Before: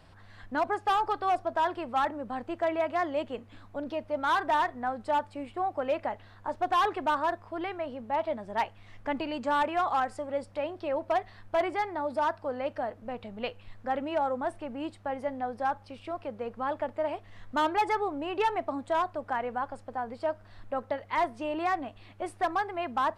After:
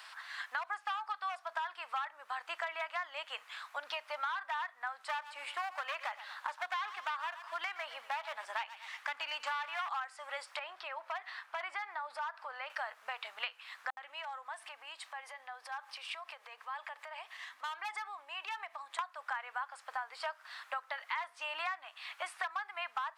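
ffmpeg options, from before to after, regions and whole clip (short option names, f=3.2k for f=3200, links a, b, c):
-filter_complex "[0:a]asettb=1/sr,asplit=3[a][b][c];[a]atrim=end=5.094[d];[b]atrim=start=5.09:end=9.89,asetpts=PTS-STARTPTS,afade=t=in:d=0.004:c=qsin,afade=t=out:st=4.796:d=0.004:c=qsin,aeval=exprs='clip(val(0),-1,0.0376)':c=same,aecho=1:1:118|236|354:0.141|0.048|0.0163,atrim=end_sample=211680[e];[c]atrim=start=9.886[f];[d][e]acrossfade=d=0.004:c1=hsin:c2=qsin[g];[g][f]acrossfade=d=0.004:c1=qsin:c2=hsin,asettb=1/sr,asplit=3[h][i][j];[h]atrim=end=10.594[k];[i]atrim=start=10.59:end=12.7,asetpts=PTS-STARTPTS,afade=t=in:d=0.004:c=qsin,afade=t=out:st=2.106:d=0.004:c=qsin,highshelf=f=4.1k:g=-9.5,acompressor=threshold=-43dB:ratio=2:attack=3.2:release=140:knee=1:detection=peak[l];[j]atrim=start=12.696[m];[k][l]acrossfade=d=0.004:c1=hsin:c2=qsin[n];[n][m]acrossfade=d=0.004:c1=qsin:c2=hsin,asettb=1/sr,asplit=3[o][p][q];[o]atrim=end=13.904[r];[p]atrim=start=13.9:end=18.99,asetpts=PTS-STARTPTS,afade=t=in:d=0.004:c=qsin,afade=t=out:st=5.086:d=0.004:c=qsin,acompressor=threshold=-45dB:ratio=4:attack=3.2:release=140:knee=1:detection=peak,bandreject=f=1.4k:w=10,acrossover=split=250[s][t];[t]adelay=70[u];[s][u]amix=inputs=2:normalize=0,atrim=end_sample=224469[v];[q]atrim=start=18.986[w];[r][v]acrossfade=d=0.004:c1=hsin:c2=qsin[x];[x][w]acrossfade=d=0.004:c1=qsin:c2=hsin,acrossover=split=4100[y][z];[z]acompressor=threshold=-57dB:ratio=4:attack=1:release=60[aa];[y][aa]amix=inputs=2:normalize=0,highpass=f=1.1k:w=0.5412,highpass=f=1.1k:w=1.3066,acompressor=threshold=-48dB:ratio=8,volume=12.5dB"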